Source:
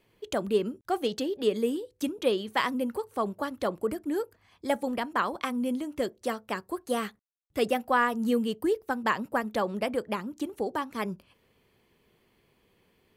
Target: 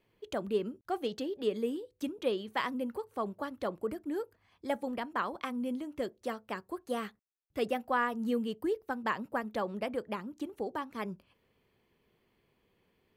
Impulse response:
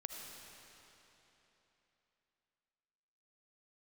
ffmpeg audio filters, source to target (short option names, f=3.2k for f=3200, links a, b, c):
-af "equalizer=f=9.4k:w=0.54:g=-6,volume=-5.5dB"